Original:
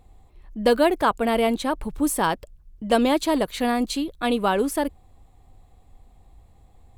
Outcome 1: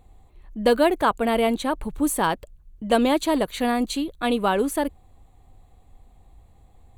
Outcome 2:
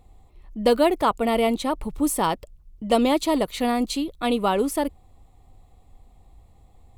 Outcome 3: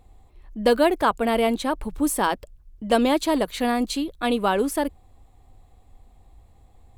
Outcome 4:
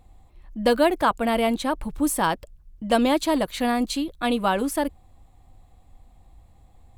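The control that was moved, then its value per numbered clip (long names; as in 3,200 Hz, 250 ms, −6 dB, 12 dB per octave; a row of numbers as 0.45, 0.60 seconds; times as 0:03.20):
notch filter, centre frequency: 5,200, 1,600, 160, 420 Hertz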